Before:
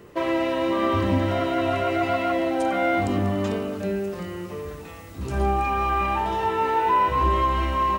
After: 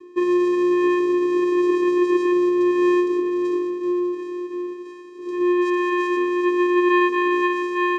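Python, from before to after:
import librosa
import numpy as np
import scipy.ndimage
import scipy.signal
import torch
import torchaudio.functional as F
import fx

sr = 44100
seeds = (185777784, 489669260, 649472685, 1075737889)

y = fx.vocoder(x, sr, bands=4, carrier='square', carrier_hz=355.0)
y = y * librosa.db_to_amplitude(4.5)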